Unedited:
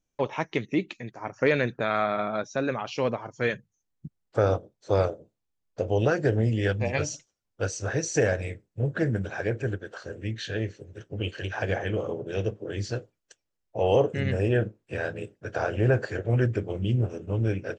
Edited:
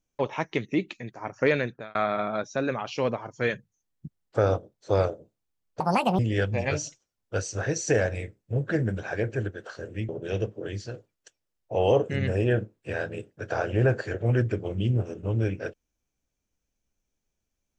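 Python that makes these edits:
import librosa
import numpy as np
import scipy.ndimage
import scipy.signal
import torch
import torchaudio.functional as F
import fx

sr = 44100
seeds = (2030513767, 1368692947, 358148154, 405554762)

y = fx.edit(x, sr, fx.fade_out_span(start_s=1.51, length_s=0.44),
    fx.speed_span(start_s=5.8, length_s=0.66, speed=1.7),
    fx.cut(start_s=10.36, length_s=1.77),
    fx.fade_out_to(start_s=12.7, length_s=0.28, curve='qua', floor_db=-6.5), tone=tone)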